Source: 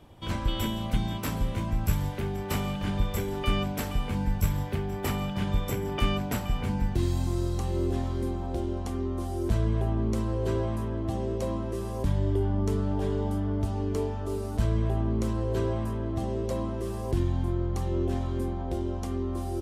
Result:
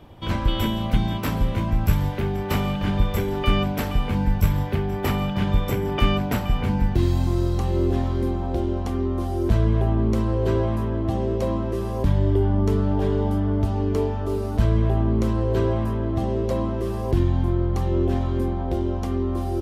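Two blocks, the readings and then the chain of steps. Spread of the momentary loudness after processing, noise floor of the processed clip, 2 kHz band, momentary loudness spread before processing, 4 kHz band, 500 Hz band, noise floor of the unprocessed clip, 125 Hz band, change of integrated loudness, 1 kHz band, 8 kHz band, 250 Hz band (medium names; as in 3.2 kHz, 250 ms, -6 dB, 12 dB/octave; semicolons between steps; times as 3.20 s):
5 LU, -27 dBFS, +6.0 dB, 5 LU, +5.0 dB, +6.5 dB, -33 dBFS, +6.5 dB, +6.5 dB, +6.5 dB, no reading, +6.5 dB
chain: peaking EQ 8.5 kHz -9 dB 1.2 oct; trim +6.5 dB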